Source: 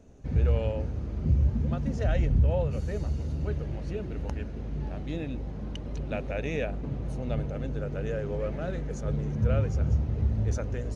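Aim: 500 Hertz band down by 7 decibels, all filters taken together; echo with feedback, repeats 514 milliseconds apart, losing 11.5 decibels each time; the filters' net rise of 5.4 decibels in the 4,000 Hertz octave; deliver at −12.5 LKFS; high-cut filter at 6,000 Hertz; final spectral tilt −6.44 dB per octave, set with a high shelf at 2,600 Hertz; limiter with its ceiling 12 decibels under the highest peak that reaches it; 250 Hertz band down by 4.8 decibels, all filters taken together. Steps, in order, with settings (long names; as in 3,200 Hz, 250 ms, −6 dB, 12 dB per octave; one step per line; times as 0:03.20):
low-pass filter 6,000 Hz
parametric band 250 Hz −6 dB
parametric band 500 Hz −7 dB
high-shelf EQ 2,600 Hz +5.5 dB
parametric band 4,000 Hz +3.5 dB
brickwall limiter −26.5 dBFS
repeating echo 514 ms, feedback 27%, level −11.5 dB
level +23.5 dB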